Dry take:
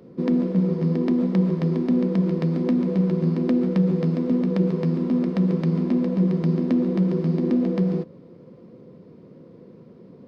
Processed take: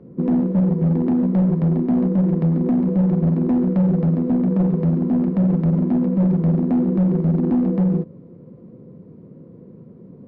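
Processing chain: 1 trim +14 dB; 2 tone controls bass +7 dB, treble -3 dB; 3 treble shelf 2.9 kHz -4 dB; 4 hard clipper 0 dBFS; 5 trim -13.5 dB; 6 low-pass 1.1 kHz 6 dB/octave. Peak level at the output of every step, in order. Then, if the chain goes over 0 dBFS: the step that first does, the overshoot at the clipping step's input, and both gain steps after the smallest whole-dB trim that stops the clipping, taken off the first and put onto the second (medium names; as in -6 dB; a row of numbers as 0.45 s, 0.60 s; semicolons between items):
+4.0 dBFS, +8.0 dBFS, +8.0 dBFS, 0.0 dBFS, -13.5 dBFS, -13.5 dBFS; step 1, 8.0 dB; step 1 +6 dB, step 5 -5.5 dB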